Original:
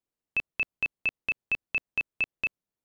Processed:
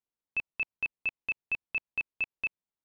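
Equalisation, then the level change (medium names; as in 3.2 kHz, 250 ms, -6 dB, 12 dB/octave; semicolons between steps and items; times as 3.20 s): dynamic bell 2.5 kHz, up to +6 dB, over -38 dBFS, Q 3.9; distance through air 70 m; peaking EQ 930 Hz +5 dB 0.46 oct; -7.5 dB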